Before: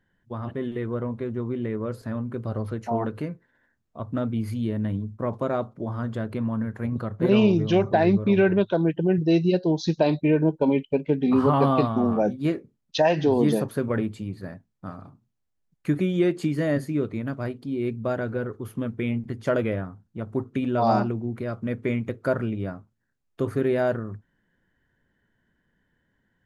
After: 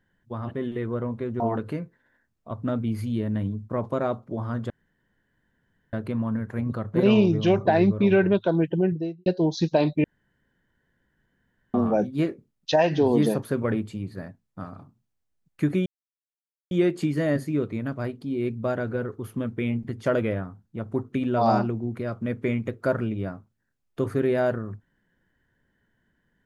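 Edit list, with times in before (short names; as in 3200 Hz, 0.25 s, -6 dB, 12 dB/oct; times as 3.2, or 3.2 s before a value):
1.4–2.89 cut
6.19 insert room tone 1.23 s
8.99–9.52 studio fade out
10.3–12 room tone
16.12 insert silence 0.85 s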